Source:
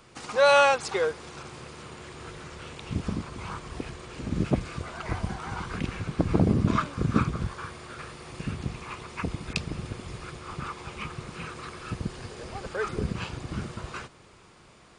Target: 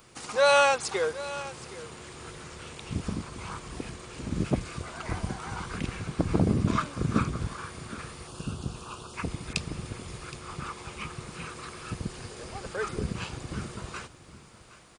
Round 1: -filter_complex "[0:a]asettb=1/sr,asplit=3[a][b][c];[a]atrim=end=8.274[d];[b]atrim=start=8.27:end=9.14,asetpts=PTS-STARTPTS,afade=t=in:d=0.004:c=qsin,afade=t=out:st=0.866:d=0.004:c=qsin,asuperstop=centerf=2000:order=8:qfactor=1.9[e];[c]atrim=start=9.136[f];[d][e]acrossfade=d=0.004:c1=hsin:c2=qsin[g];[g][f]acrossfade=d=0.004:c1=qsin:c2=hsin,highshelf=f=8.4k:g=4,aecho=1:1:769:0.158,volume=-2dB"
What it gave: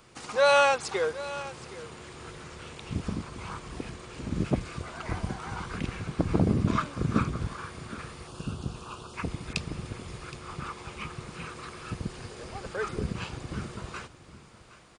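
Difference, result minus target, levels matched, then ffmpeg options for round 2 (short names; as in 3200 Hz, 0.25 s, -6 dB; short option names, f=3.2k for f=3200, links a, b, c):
8000 Hz band -3.5 dB
-filter_complex "[0:a]asettb=1/sr,asplit=3[a][b][c];[a]atrim=end=8.274[d];[b]atrim=start=8.27:end=9.14,asetpts=PTS-STARTPTS,afade=t=in:d=0.004:c=qsin,afade=t=out:st=0.866:d=0.004:c=qsin,asuperstop=centerf=2000:order=8:qfactor=1.9[e];[c]atrim=start=9.136[f];[d][e]acrossfade=d=0.004:c1=hsin:c2=qsin[g];[g][f]acrossfade=d=0.004:c1=qsin:c2=hsin,highshelf=f=8.4k:g=13.5,aecho=1:1:769:0.158,volume=-2dB"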